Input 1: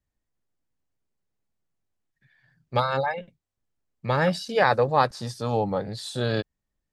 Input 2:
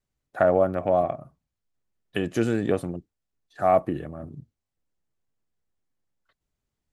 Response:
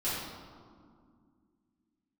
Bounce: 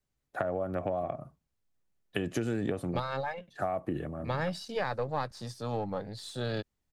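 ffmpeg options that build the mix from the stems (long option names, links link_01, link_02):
-filter_complex "[0:a]aeval=exprs='if(lt(val(0),0),0.708*val(0),val(0))':channel_layout=same,adelay=200,volume=-6.5dB[link_01];[1:a]acompressor=threshold=-22dB:ratio=6,volume=-1dB[link_02];[link_01][link_02]amix=inputs=2:normalize=0,acrossover=split=130[link_03][link_04];[link_04]acompressor=threshold=-28dB:ratio=6[link_05];[link_03][link_05]amix=inputs=2:normalize=0"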